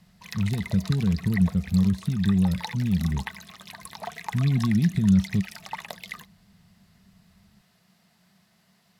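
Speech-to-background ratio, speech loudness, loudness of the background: 14.5 dB, −24.5 LKFS, −39.0 LKFS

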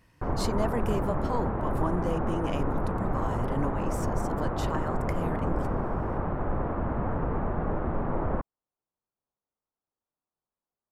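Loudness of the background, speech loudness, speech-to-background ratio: −31.0 LKFS, −35.0 LKFS, −4.0 dB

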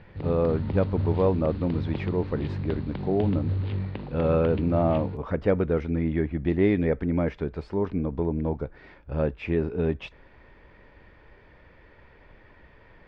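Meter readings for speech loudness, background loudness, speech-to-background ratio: −27.0 LKFS, −32.5 LKFS, 5.5 dB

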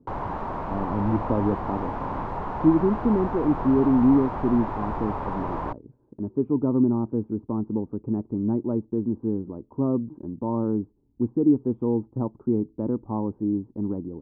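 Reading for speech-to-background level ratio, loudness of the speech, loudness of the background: 6.0 dB, −25.5 LKFS, −31.5 LKFS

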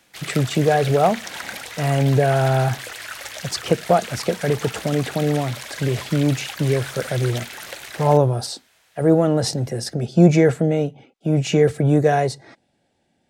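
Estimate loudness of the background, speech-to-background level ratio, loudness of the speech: −32.5 LKFS, 12.5 dB, −20.0 LKFS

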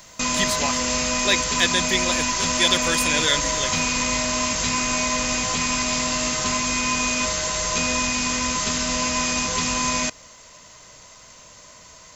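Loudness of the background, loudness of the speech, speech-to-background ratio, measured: −21.5 LKFS, −24.0 LKFS, −2.5 dB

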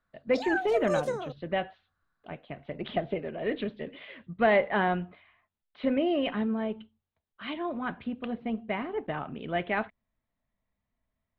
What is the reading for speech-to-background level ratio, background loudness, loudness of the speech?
2.0 dB, −32.5 LKFS, −30.5 LKFS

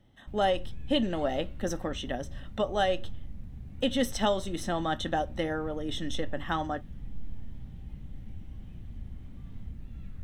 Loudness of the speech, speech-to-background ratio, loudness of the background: −31.5 LKFS, 14.5 dB, −46.0 LKFS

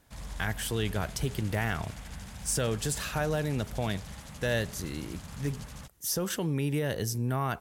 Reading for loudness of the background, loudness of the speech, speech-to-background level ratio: −44.0 LKFS, −32.0 LKFS, 12.0 dB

